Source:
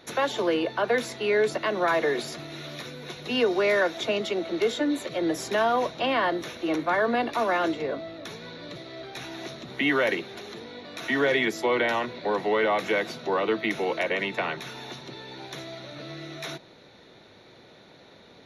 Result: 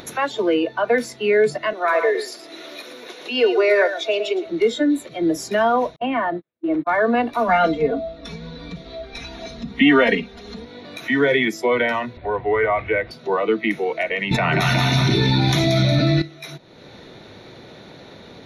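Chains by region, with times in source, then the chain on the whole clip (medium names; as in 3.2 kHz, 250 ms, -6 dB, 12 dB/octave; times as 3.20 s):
1.73–4.46 s: high-pass 300 Hz 24 dB/octave + delay 113 ms -7.5 dB
5.96–6.87 s: gate -31 dBFS, range -45 dB + distance through air 340 m
7.48–10.65 s: low-pass 8.5 kHz + bass shelf 110 Hz +10 dB + comb 4.3 ms, depth 95%
12.17–13.11 s: low-pass 3 kHz 24 dB/octave + resonant low shelf 120 Hz +11 dB, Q 1.5
14.31–16.22 s: bass shelf 170 Hz +7 dB + two-band feedback delay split 490 Hz, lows 91 ms, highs 181 ms, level -7 dB + level flattener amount 100%
whole clip: spectral noise reduction 11 dB; bass shelf 320 Hz +5.5 dB; upward compressor, threshold -33 dBFS; trim +5 dB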